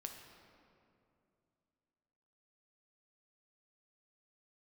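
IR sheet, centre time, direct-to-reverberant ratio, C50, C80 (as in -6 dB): 55 ms, 3.0 dB, 5.0 dB, 6.5 dB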